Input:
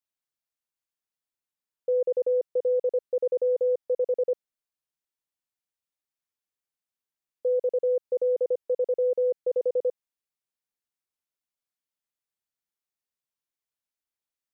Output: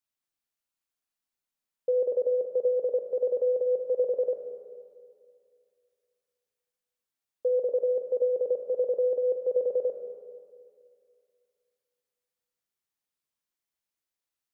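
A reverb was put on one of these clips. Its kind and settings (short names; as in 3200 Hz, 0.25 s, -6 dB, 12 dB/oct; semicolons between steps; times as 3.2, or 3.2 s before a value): Schroeder reverb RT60 2.3 s, combs from 27 ms, DRR 3 dB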